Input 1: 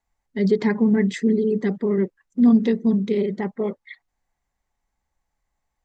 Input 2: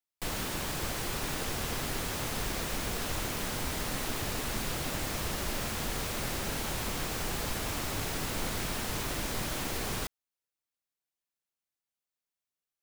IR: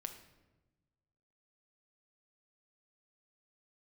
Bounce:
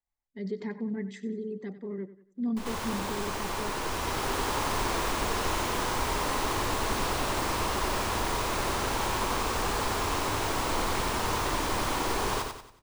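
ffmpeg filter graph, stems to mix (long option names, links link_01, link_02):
-filter_complex "[0:a]volume=-15.5dB,asplit=3[link_01][link_02][link_03];[link_02]volume=-14.5dB[link_04];[1:a]equalizer=frequency=160:width_type=o:width=0.67:gain=-6,equalizer=frequency=400:width_type=o:width=0.67:gain=4,equalizer=frequency=1000:width_type=o:width=0.67:gain=10,equalizer=frequency=16000:width_type=o:width=0.67:gain=-9,adelay=2350,volume=0.5dB,asplit=3[link_05][link_06][link_07];[link_06]volume=-10.5dB[link_08];[link_07]volume=-3.5dB[link_09];[link_03]apad=whole_len=669403[link_10];[link_05][link_10]sidechaincompress=threshold=-44dB:ratio=8:attack=16:release=979[link_11];[2:a]atrim=start_sample=2205[link_12];[link_08][link_12]afir=irnorm=-1:irlink=0[link_13];[link_04][link_09]amix=inputs=2:normalize=0,aecho=0:1:93|186|279|372|465:1|0.39|0.152|0.0593|0.0231[link_14];[link_01][link_11][link_13][link_14]amix=inputs=4:normalize=0"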